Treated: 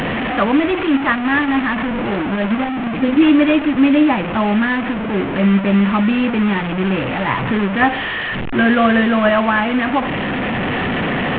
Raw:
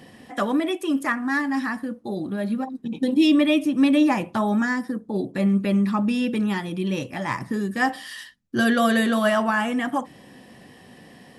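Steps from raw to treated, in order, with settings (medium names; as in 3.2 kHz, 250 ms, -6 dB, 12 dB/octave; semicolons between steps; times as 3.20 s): one-bit delta coder 16 kbps, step -22 dBFS; in parallel at +0.5 dB: gain riding 2 s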